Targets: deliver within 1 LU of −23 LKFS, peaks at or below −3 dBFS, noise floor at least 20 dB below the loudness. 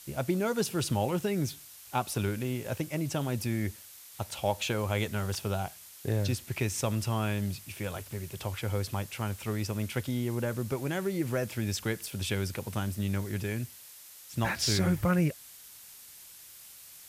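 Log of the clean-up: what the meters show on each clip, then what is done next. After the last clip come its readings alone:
background noise floor −51 dBFS; target noise floor −52 dBFS; integrated loudness −32.0 LKFS; sample peak −15.0 dBFS; target loudness −23.0 LKFS
→ broadband denoise 6 dB, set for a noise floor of −51 dBFS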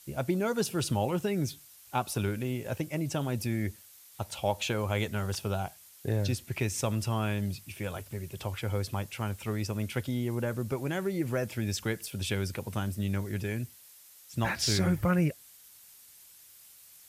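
background noise floor −55 dBFS; integrated loudness −32.0 LKFS; sample peak −15.0 dBFS; target loudness −23.0 LKFS
→ level +9 dB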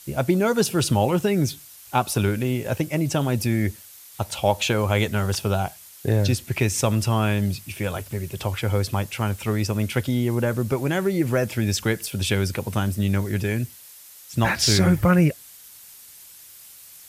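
integrated loudness −23.0 LKFS; sample peak −6.0 dBFS; background noise floor −46 dBFS

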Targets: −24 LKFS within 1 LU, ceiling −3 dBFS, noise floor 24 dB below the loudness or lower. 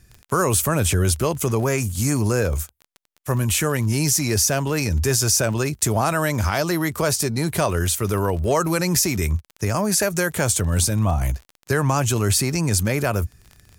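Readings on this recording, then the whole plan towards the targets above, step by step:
crackle rate 24 per second; integrated loudness −21.0 LKFS; sample peak −6.5 dBFS; target loudness −24.0 LKFS
→ click removal
level −3 dB

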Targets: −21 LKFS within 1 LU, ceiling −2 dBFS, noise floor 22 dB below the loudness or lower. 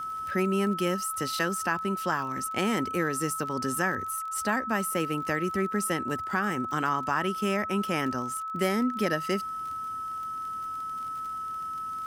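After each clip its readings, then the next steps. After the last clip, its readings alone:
crackle rate 29 per second; interfering tone 1,300 Hz; level of the tone −32 dBFS; integrated loudness −29.0 LKFS; sample peak −12.0 dBFS; target loudness −21.0 LKFS
→ click removal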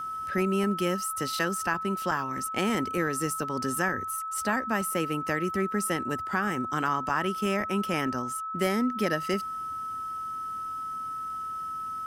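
crackle rate 0.083 per second; interfering tone 1,300 Hz; level of the tone −32 dBFS
→ notch filter 1,300 Hz, Q 30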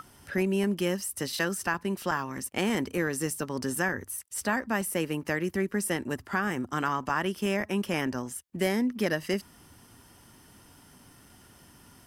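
interfering tone none found; integrated loudness −30.0 LKFS; sample peak −13.0 dBFS; target loudness −21.0 LKFS
→ level +9 dB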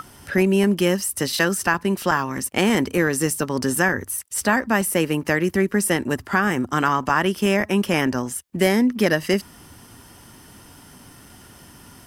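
integrated loudness −21.0 LKFS; sample peak −4.0 dBFS; background noise floor −47 dBFS

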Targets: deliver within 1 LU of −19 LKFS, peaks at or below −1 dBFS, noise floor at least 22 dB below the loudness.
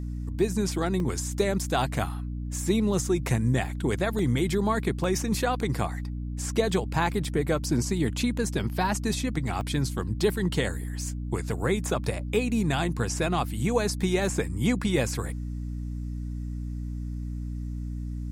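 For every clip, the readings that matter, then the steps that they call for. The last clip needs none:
number of dropouts 6; longest dropout 1.5 ms; mains hum 60 Hz; hum harmonics up to 300 Hz; level of the hum −30 dBFS; integrated loudness −28.0 LKFS; sample peak −11.0 dBFS; target loudness −19.0 LKFS
→ repair the gap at 0:01.00/0:04.19/0:05.04/0:06.57/0:09.61/0:14.02, 1.5 ms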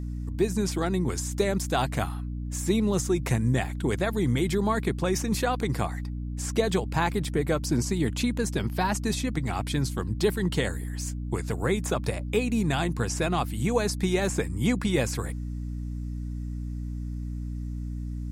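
number of dropouts 0; mains hum 60 Hz; hum harmonics up to 300 Hz; level of the hum −30 dBFS
→ hum removal 60 Hz, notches 5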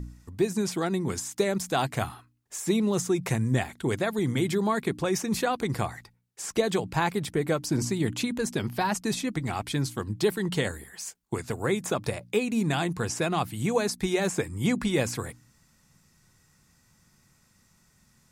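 mains hum none found; integrated loudness −28.5 LKFS; sample peak −11.5 dBFS; target loudness −19.0 LKFS
→ level +9.5 dB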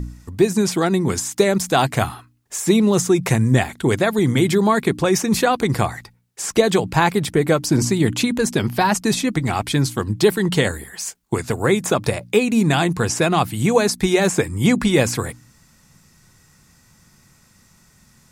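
integrated loudness −19.0 LKFS; sample peak −2.0 dBFS; background noise floor −55 dBFS

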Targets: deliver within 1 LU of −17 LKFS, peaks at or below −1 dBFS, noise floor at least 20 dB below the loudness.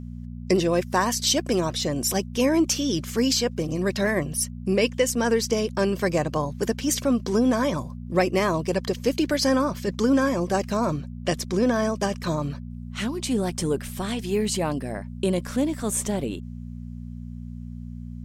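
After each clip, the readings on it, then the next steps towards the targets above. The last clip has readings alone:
mains hum 60 Hz; hum harmonics up to 240 Hz; level of the hum −34 dBFS; integrated loudness −24.5 LKFS; sample peak −8.5 dBFS; target loudness −17.0 LKFS
→ hum removal 60 Hz, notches 4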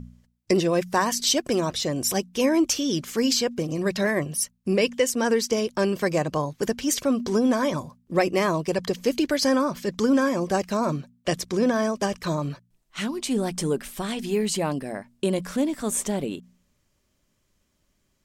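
mains hum none found; integrated loudness −24.5 LKFS; sample peak −9.0 dBFS; target loudness −17.0 LKFS
→ level +7.5 dB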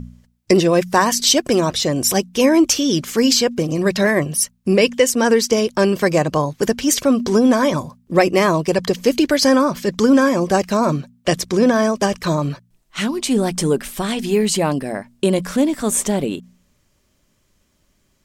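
integrated loudness −17.0 LKFS; sample peak −1.5 dBFS; background noise floor −63 dBFS

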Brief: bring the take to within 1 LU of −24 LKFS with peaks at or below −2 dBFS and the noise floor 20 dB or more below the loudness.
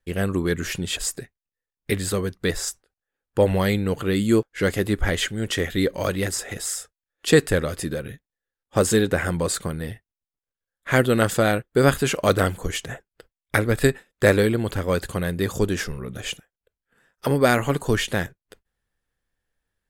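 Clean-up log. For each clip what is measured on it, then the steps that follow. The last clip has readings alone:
integrated loudness −23.0 LKFS; sample peak −1.5 dBFS; target loudness −24.0 LKFS
→ level −1 dB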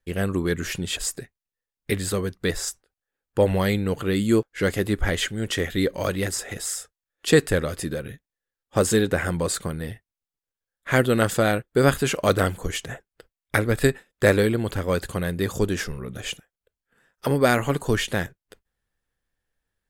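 integrated loudness −24.0 LKFS; sample peak −2.5 dBFS; background noise floor −91 dBFS

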